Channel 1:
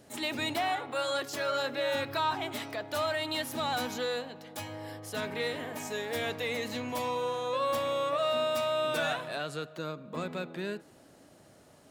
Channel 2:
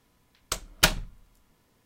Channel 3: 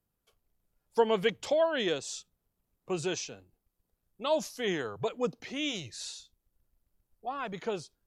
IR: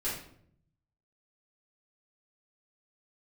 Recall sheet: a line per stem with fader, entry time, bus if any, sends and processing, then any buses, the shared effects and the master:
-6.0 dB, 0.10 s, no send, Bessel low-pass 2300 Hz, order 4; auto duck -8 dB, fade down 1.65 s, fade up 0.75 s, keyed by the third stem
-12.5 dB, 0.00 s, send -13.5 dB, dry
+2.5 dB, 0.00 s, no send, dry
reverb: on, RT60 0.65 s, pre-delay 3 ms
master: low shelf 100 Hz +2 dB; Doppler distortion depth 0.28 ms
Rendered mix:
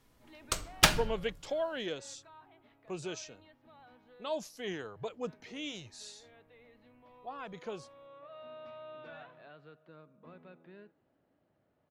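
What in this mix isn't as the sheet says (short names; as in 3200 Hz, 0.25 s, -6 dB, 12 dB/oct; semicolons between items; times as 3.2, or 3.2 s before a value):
stem 1 -6.0 dB -> -17.5 dB; stem 2 -12.5 dB -> -3.0 dB; stem 3 +2.5 dB -> -7.5 dB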